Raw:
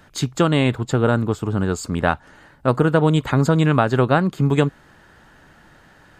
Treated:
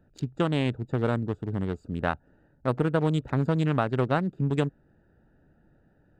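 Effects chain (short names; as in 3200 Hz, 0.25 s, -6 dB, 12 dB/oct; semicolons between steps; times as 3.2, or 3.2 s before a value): Wiener smoothing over 41 samples; gain -8 dB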